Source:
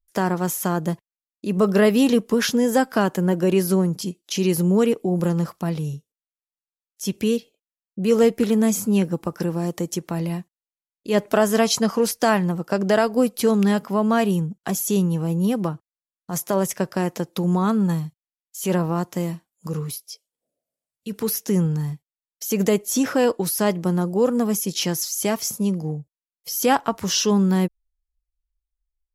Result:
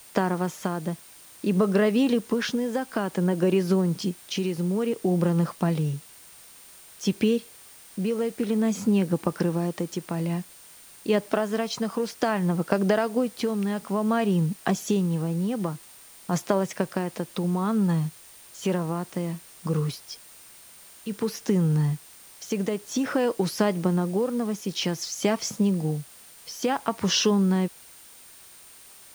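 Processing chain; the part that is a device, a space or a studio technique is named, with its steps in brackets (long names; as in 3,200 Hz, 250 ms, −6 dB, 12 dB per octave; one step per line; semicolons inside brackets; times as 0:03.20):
medium wave at night (band-pass filter 100–4,300 Hz; downward compressor, threshold −22 dBFS, peak gain reduction 10 dB; amplitude tremolo 0.55 Hz, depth 49%; steady tone 9,000 Hz −56 dBFS; white noise bed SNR 24 dB)
level +4 dB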